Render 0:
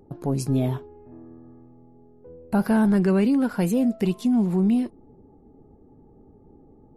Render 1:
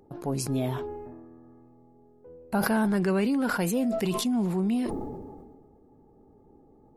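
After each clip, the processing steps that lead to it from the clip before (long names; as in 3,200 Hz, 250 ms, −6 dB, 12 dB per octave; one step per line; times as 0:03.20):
low-shelf EQ 380 Hz −8.5 dB
level that may fall only so fast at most 34 dB per second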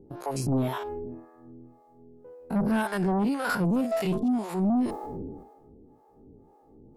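spectrum averaged block by block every 50 ms
two-band tremolo in antiphase 1.9 Hz, depth 100%, crossover 520 Hz
sine wavefolder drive 6 dB, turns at −19.5 dBFS
level −1.5 dB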